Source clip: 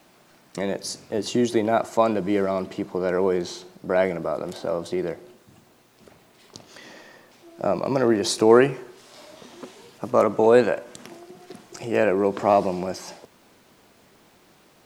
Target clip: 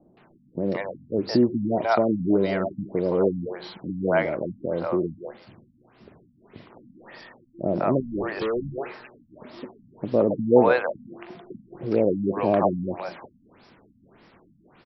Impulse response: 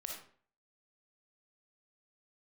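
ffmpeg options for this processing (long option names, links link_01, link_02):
-filter_complex "[0:a]acrossover=split=590|3800[link_01][link_02][link_03];[link_02]adelay=170[link_04];[link_03]adelay=440[link_05];[link_01][link_04][link_05]amix=inputs=3:normalize=0,asettb=1/sr,asplit=3[link_06][link_07][link_08];[link_06]atrim=end=8.004[link_09];[link_07]atrim=start=8:end=8.78,asetpts=PTS-STARTPTS,afade=type=in:duration=0.004:curve=qsin,afade=type=out:start_time=0.776:duration=0.004:curve=qsin,volume=26.5dB,asoftclip=hard,volume=-26.5dB[link_10];[link_08]atrim=start=8.776[link_11];[link_09][link_10]acrossfade=duration=0.004:curve1=hsin:curve2=qsin[link_12];[link_12][link_11]acrossfade=duration=0.004:curve1=qsin:curve2=hsin,afftfilt=real='re*lt(b*sr/1024,260*pow(5800/260,0.5+0.5*sin(2*PI*1.7*pts/sr)))':imag='im*lt(b*sr/1024,260*pow(5800/260,0.5+0.5*sin(2*PI*1.7*pts/sr)))':win_size=1024:overlap=0.75,volume=3dB"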